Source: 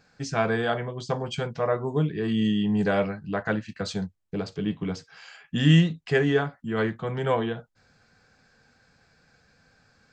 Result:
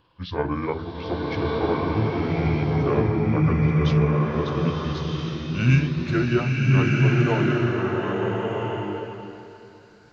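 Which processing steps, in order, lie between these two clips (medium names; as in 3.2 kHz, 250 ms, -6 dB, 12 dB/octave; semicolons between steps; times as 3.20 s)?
pitch bend over the whole clip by -7.5 st ending unshifted; swelling reverb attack 1360 ms, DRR -4 dB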